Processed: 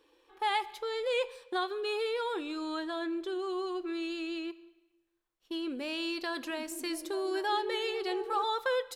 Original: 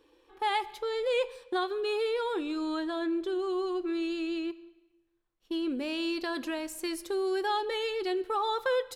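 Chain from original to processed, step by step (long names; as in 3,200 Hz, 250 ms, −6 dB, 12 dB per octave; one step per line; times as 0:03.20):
low-shelf EQ 330 Hz −9 dB
0:06.29–0:08.44: echo through a band-pass that steps 210 ms, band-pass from 200 Hz, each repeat 0.7 octaves, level −1.5 dB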